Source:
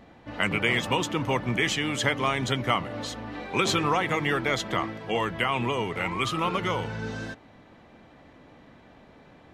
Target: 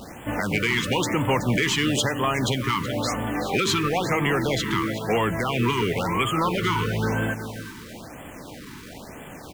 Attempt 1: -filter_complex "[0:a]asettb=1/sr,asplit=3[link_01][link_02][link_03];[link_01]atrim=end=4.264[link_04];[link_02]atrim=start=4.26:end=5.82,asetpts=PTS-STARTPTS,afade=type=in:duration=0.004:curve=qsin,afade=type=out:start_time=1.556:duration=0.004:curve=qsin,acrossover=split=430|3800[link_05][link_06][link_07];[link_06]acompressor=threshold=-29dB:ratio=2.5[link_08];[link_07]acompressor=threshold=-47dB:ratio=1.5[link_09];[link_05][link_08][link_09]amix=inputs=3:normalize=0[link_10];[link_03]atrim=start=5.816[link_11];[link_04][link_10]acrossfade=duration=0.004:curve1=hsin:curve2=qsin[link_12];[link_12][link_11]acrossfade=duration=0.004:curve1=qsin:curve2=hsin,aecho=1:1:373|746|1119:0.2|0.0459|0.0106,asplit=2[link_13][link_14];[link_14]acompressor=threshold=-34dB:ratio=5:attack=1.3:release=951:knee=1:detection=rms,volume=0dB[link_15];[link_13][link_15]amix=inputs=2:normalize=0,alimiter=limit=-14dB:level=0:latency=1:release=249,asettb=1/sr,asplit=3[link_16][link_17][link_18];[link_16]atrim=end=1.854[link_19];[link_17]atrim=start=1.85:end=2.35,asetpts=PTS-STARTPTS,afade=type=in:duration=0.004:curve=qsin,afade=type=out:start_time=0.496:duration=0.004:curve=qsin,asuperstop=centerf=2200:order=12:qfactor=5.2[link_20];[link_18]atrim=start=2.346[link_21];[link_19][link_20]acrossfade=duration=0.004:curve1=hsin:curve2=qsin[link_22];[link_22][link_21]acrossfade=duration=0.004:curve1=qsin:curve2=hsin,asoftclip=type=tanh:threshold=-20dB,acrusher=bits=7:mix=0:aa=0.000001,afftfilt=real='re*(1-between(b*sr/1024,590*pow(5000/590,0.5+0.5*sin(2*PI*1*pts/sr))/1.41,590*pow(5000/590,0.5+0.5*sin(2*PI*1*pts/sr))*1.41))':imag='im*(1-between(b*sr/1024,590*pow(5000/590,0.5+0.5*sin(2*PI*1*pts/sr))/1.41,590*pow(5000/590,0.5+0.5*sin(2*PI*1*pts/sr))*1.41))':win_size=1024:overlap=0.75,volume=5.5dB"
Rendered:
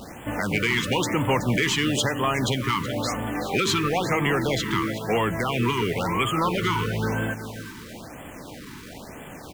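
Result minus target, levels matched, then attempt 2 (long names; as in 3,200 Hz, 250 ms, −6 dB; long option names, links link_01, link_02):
downward compressor: peak gain reduction +5 dB
-filter_complex "[0:a]asettb=1/sr,asplit=3[link_01][link_02][link_03];[link_01]atrim=end=4.264[link_04];[link_02]atrim=start=4.26:end=5.82,asetpts=PTS-STARTPTS,afade=type=in:duration=0.004:curve=qsin,afade=type=out:start_time=1.556:duration=0.004:curve=qsin,acrossover=split=430|3800[link_05][link_06][link_07];[link_06]acompressor=threshold=-29dB:ratio=2.5[link_08];[link_07]acompressor=threshold=-47dB:ratio=1.5[link_09];[link_05][link_08][link_09]amix=inputs=3:normalize=0[link_10];[link_03]atrim=start=5.816[link_11];[link_04][link_10]acrossfade=duration=0.004:curve1=hsin:curve2=qsin[link_12];[link_12][link_11]acrossfade=duration=0.004:curve1=qsin:curve2=hsin,aecho=1:1:373|746|1119:0.2|0.0459|0.0106,asplit=2[link_13][link_14];[link_14]acompressor=threshold=-27.5dB:ratio=5:attack=1.3:release=951:knee=1:detection=rms,volume=0dB[link_15];[link_13][link_15]amix=inputs=2:normalize=0,alimiter=limit=-14dB:level=0:latency=1:release=249,asettb=1/sr,asplit=3[link_16][link_17][link_18];[link_16]atrim=end=1.854[link_19];[link_17]atrim=start=1.85:end=2.35,asetpts=PTS-STARTPTS,afade=type=in:duration=0.004:curve=qsin,afade=type=out:start_time=0.496:duration=0.004:curve=qsin,asuperstop=centerf=2200:order=12:qfactor=5.2[link_20];[link_18]atrim=start=2.346[link_21];[link_19][link_20]acrossfade=duration=0.004:curve1=hsin:curve2=qsin[link_22];[link_22][link_21]acrossfade=duration=0.004:curve1=qsin:curve2=hsin,asoftclip=type=tanh:threshold=-20dB,acrusher=bits=7:mix=0:aa=0.000001,afftfilt=real='re*(1-between(b*sr/1024,590*pow(5000/590,0.5+0.5*sin(2*PI*1*pts/sr))/1.41,590*pow(5000/590,0.5+0.5*sin(2*PI*1*pts/sr))*1.41))':imag='im*(1-between(b*sr/1024,590*pow(5000/590,0.5+0.5*sin(2*PI*1*pts/sr))/1.41,590*pow(5000/590,0.5+0.5*sin(2*PI*1*pts/sr))*1.41))':win_size=1024:overlap=0.75,volume=5.5dB"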